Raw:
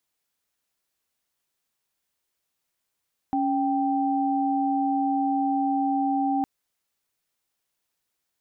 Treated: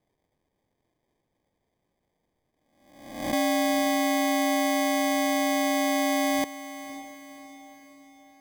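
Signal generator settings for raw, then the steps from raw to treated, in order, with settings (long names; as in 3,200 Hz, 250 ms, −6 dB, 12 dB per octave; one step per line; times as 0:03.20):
held notes C#4/G5 sine, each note −24 dBFS 3.11 s
peak hold with a rise ahead of every peak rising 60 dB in 0.82 s
decimation without filtering 32×
feedback delay with all-pass diffusion 541 ms, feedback 47%, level −14 dB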